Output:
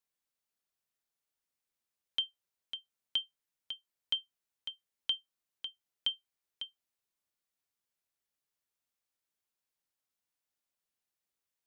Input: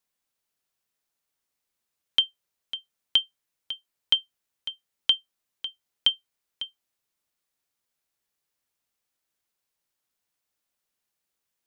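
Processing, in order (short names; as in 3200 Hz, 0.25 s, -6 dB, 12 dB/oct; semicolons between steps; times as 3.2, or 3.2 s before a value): limiter -14 dBFS, peak gain reduction 4.5 dB; gain -7.5 dB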